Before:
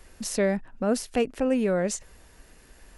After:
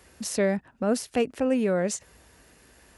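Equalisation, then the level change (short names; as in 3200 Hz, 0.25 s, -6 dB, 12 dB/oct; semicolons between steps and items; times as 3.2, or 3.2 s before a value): HPF 59 Hz 24 dB/oct; 0.0 dB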